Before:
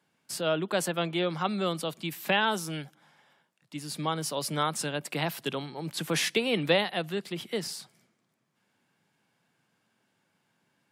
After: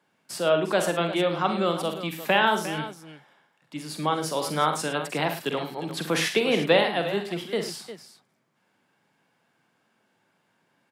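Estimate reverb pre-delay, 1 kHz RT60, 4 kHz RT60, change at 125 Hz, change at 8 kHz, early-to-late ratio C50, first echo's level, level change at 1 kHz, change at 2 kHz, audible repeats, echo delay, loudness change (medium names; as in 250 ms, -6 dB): no reverb, no reverb, no reverb, +1.5 dB, +0.5 dB, no reverb, -8.5 dB, +6.0 dB, +4.5 dB, 3, 46 ms, +4.5 dB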